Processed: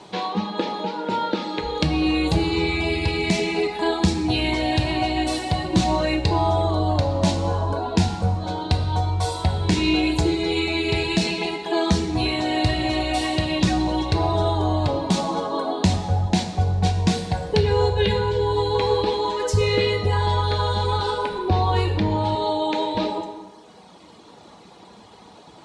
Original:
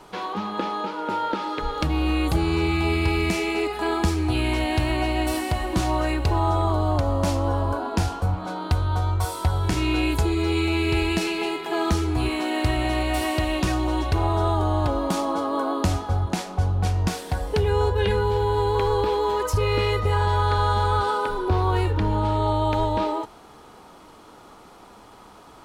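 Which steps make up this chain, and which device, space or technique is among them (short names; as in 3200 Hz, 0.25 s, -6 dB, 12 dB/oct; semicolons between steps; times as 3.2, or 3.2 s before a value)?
reverb removal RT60 1.4 s; car door speaker (speaker cabinet 84–8500 Hz, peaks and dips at 170 Hz +6 dB, 1300 Hz -10 dB, 3900 Hz +7 dB); 22.35–22.95 HPF 200 Hz 24 dB/oct; plate-style reverb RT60 1.4 s, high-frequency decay 0.75×, DRR 4.5 dB; gain +3.5 dB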